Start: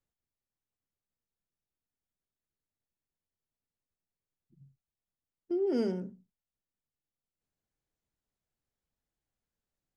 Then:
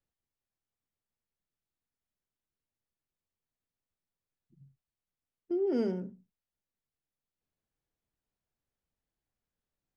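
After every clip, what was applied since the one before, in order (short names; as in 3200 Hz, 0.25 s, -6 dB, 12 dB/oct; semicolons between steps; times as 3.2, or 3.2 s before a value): high shelf 5400 Hz -10 dB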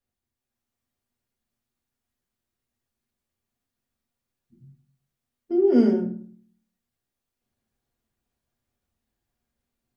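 AGC gain up to 4.5 dB; reverb RT60 0.50 s, pre-delay 4 ms, DRR -0.5 dB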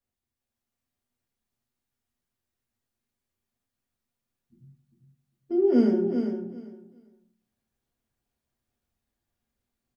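feedback echo 0.398 s, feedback 18%, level -7 dB; gain -2.5 dB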